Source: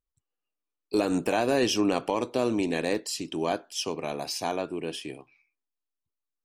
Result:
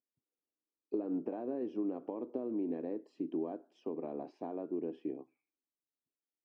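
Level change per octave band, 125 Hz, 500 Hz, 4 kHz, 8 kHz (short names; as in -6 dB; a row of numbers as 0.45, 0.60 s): -16.0 dB, -11.0 dB, under -35 dB, under -40 dB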